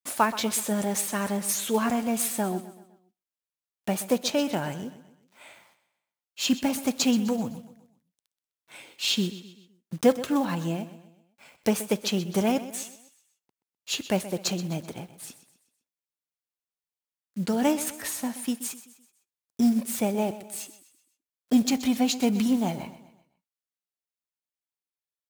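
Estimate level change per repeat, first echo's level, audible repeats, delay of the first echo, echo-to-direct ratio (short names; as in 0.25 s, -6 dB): -7.0 dB, -15.0 dB, 3, 0.127 s, -14.0 dB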